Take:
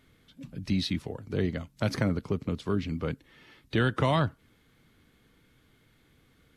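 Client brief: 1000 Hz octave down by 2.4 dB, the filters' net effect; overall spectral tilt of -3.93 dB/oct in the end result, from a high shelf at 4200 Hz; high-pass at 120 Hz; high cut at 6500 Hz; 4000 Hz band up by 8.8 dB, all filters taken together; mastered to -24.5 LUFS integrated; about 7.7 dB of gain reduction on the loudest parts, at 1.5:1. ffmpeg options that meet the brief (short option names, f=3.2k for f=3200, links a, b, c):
-af "highpass=120,lowpass=6.5k,equalizer=f=1k:t=o:g=-4,equalizer=f=4k:t=o:g=8,highshelf=f=4.2k:g=6,acompressor=threshold=-43dB:ratio=1.5,volume=12.5dB"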